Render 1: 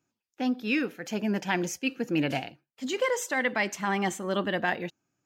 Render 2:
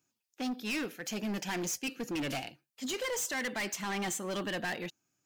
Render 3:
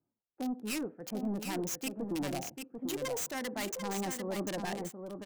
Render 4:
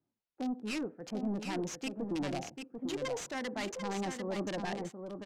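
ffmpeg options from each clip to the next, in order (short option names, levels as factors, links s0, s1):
-af "highshelf=f=3000:g=11,asoftclip=type=hard:threshold=0.0447,volume=0.596"
-filter_complex "[0:a]acrossover=split=580|1000[s0][s1][s2];[s2]acrusher=bits=4:mix=0:aa=0.5[s3];[s0][s1][s3]amix=inputs=3:normalize=0,aecho=1:1:743:0.473"
-af "lowpass=5400"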